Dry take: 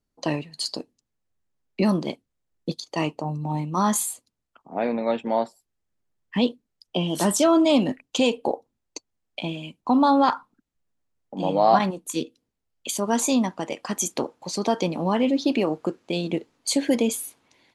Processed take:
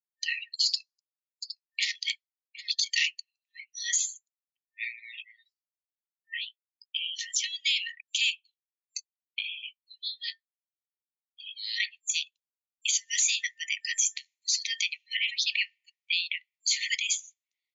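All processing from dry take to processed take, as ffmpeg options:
-filter_complex "[0:a]asettb=1/sr,asplit=3[a][b][c];[a]atrim=end=0.664[d];[b]atrim=start=0.66:end=3.2,asetpts=PTS-STARTPTS,afade=t=in:d=0.004:c=qsin,afade=t=out:st=2.536:d=0.004:c=qsin,highshelf=f=3.5k:g=9.5,aeval=exprs='0.133*(abs(mod(val(0)/0.133+3,4)-2)-1)':c=same,aecho=1:1:763:0.211,atrim=end_sample=112014[e];[c]atrim=start=3.196[f];[d][e]acrossfade=d=0.004:c1=hsin:c2=qsin[g];[g][f]acrossfade=d=0.004:c1=qsin:c2=hsin,asettb=1/sr,asplit=3[h][i][j];[h]atrim=end=4.974[k];[i]atrim=start=4.97:end=7.44,asetpts=PTS-STARTPTS,afade=t=in:d=0.004:c=qsin,afade=t=out:st=2.466:d=0.004:c=qsin,aemphasis=mode=reproduction:type=50kf,acompressor=threshold=-23dB:ratio=8:attack=3.2:release=140:knee=1:detection=peak,asplit=2[l][m];[m]adelay=18,volume=-9dB[n];[l][n]amix=inputs=2:normalize=0,atrim=end_sample=108927[o];[j]atrim=start=7.436[p];[k][o]acrossfade=d=0.004:c1=hsin:c2=qsin[q];[q][p]acrossfade=d=0.004:c1=qsin:c2=hsin,asettb=1/sr,asplit=3[r][s][t];[r]atrim=end=8.354[u];[s]atrim=start=8.35:end=11.56,asetpts=PTS-STARTPTS,afade=t=in:d=0.004:c=qsin,afade=t=out:st=3.206:d=0.004:c=qsin,equalizer=f=700:w=0.98:g=-7,asplit=2[v][w];[w]adelay=21,volume=-10dB[x];[v][x]amix=inputs=2:normalize=0,atrim=end_sample=141561,flanger=delay=4.8:depth=1.1:regen=-62:speed=1.2:shape=triangular[y];[t]atrim=start=11.556[z];[u][y]acrossfade=d=0.004:c1=hsin:c2=qsin[aa];[aa][z]acrossfade=d=0.004:c1=qsin:c2=hsin,asettb=1/sr,asplit=3[ab][ac][ad];[ab]atrim=end=12.134[ae];[ac]atrim=start=12.13:end=16.96,asetpts=PTS-STARTPTS,afade=t=in:d=0.004:c=qsin,afade=t=out:st=4.826:d=0.004:c=qsin,equalizer=f=4.5k:t=o:w=1.8:g=-4.5,acontrast=38,highpass=1.3k[af];[ad]atrim=start=16.956[ag];[ae][af]acrossfade=d=0.004:c1=hsin:c2=qsin[ah];[ah][ag]acrossfade=d=0.004:c1=qsin:c2=hsin,afftdn=nr=34:nf=-45,afftfilt=real='re*between(b*sr/4096,1800,7300)':imag='im*between(b*sr/4096,1800,7300)':win_size=4096:overlap=0.75,alimiter=limit=-21.5dB:level=0:latency=1:release=47,volume=7dB"

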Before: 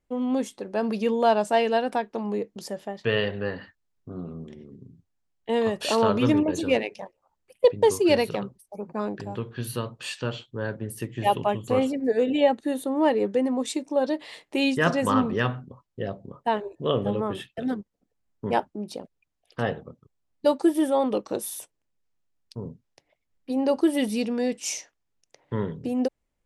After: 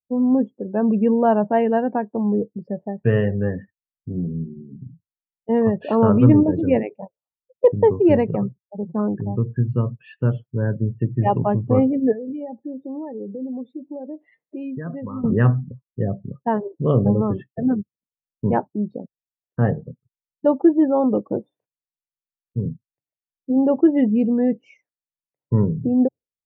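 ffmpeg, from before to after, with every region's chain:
-filter_complex "[0:a]asettb=1/sr,asplit=3[a][b][c];[a]atrim=end=12.134[d];[b]atrim=start=12.13:end=15.24,asetpts=PTS-STARTPTS,afade=t=in:d=0.004:c=qsin,afade=t=out:st=3.106:d=0.004:c=qsin,acompressor=threshold=-38dB:ratio=3:attack=3.2:release=140:knee=1:detection=peak,aecho=1:1:79|158:0.112|0.0325,atrim=end_sample=137151[e];[c]atrim=start=15.236[f];[d][e]acrossfade=d=0.004:c1=hsin:c2=qsin[g];[g][f]acrossfade=d=0.004:c1=qsin:c2=hsin,afftdn=nr=36:nf=-34,lowpass=f=2k:w=0.5412,lowpass=f=2k:w=1.3066,equalizer=f=130:w=0.52:g=14"

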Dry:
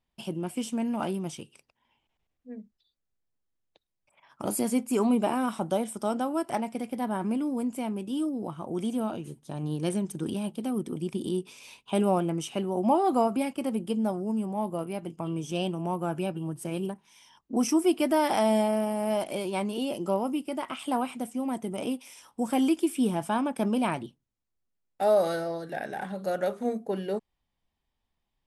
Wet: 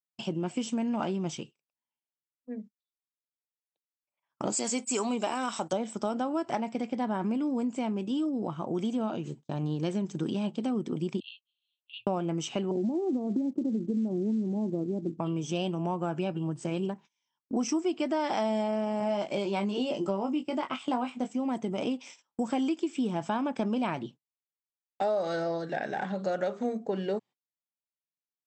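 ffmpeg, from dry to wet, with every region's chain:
-filter_complex "[0:a]asettb=1/sr,asplit=3[a][b][c];[a]atrim=end=4.524[d];[b]atrim=start=4.52:end=5.73,asetpts=PTS-STARTPTS,afade=t=in:d=0.004:c=qsin,afade=t=out:st=1.206:d=0.004:c=qsin,aemphasis=mode=production:type=riaa,agate=range=-20dB:threshold=-43dB:ratio=16:release=100:detection=peak[e];[c]atrim=start=5.726[f];[d][e]acrossfade=d=0.004:c1=hsin:c2=qsin[g];[g][f]acrossfade=d=0.004:c1=qsin:c2=hsin,asettb=1/sr,asplit=3[h][i][j];[h]atrim=end=11.204[k];[i]atrim=start=11.2:end=12.07,asetpts=PTS-STARTPTS,afade=t=in:d=0.004:c=qsin,afade=t=out:st=0.866:d=0.004:c=qsin,asuperpass=centerf=3700:order=12:qfactor=2.4,afreqshift=-330[l];[j]atrim=start=12.066[m];[k][l]acrossfade=d=0.004:c1=hsin:c2=qsin[n];[n][m]acrossfade=d=0.004:c1=qsin:c2=hsin,asettb=1/sr,asplit=3[o][p][q];[o]atrim=end=12.714[r];[p]atrim=start=12.71:end=15.2,asetpts=PTS-STARTPTS,afade=t=in:d=0.004:c=qsin,afade=t=out:st=2.486:d=0.004:c=qsin,acompressor=threshold=-25dB:ratio=8:attack=3.2:release=140:knee=1:detection=peak,lowpass=f=330:t=q:w=1.9,acrusher=bits=9:mode=log:mix=0:aa=0.000001[s];[q]atrim=start=15.196[t];[r][s]acrossfade=d=0.004:c1=hsin:c2=qsin[u];[u][t]acrossfade=d=0.004:c1=qsin:c2=hsin,asettb=1/sr,asplit=3[v][w][x];[v]atrim=end=19.004[y];[w]atrim=start=19:end=21.3,asetpts=PTS-STARTPTS,afade=t=in:d=0.004:c=qsin,afade=t=out:st=2.296:d=0.004:c=qsin,agate=range=-8dB:threshold=-39dB:ratio=16:release=100:detection=peak,asplit=2[z][aa];[aa]adelay=20,volume=-6.5dB[ab];[z][ab]amix=inputs=2:normalize=0,atrim=end_sample=101430[ac];[x]atrim=start=21.296[ad];[y][ac]acrossfade=d=0.004:c1=hsin:c2=qsin[ae];[ae][ad]acrossfade=d=0.004:c1=qsin:c2=hsin,afftfilt=real='re*between(b*sr/4096,110,8100)':imag='im*between(b*sr/4096,110,8100)':win_size=4096:overlap=0.75,agate=range=-30dB:threshold=-48dB:ratio=16:detection=peak,acompressor=threshold=-30dB:ratio=4,volume=3dB"

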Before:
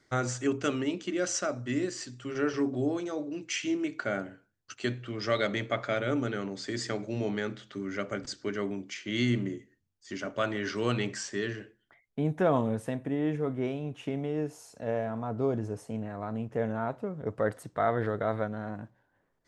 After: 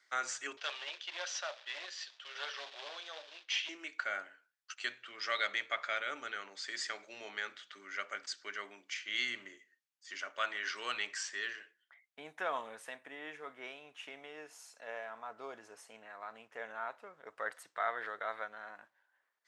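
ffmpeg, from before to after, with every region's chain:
-filter_complex "[0:a]asettb=1/sr,asplit=3[a][b][c];[a]atrim=end=0.574[d];[b]atrim=start=0.57:end=3.69,asetpts=PTS-STARTPTS,afade=t=in:d=0.004:c=qsin,afade=t=out:st=3.116:d=0.004:c=qsin,aeval=exprs='clip(val(0),-1,0.0266)':c=same,acrusher=bits=3:mode=log:mix=0:aa=0.000001,highpass=f=480:w=0.5412,highpass=f=480:w=1.3066,equalizer=f=580:t=q:w=4:g=4,equalizer=f=1.3k:t=q:w=4:g=-5,equalizer=f=2.1k:t=q:w=4:g=-4,equalizer=f=3.5k:t=q:w=4:g=7,lowpass=f=5.3k:w=0.5412,lowpass=f=5.3k:w=1.3066[e];[c]atrim=start=3.686[f];[d][e]acrossfade=d=0.004:c1=hsin:c2=qsin[g];[g][f]acrossfade=d=0.004:c1=qsin:c2=hsin,highpass=1.5k,highshelf=f=4k:g=-8,volume=3dB"

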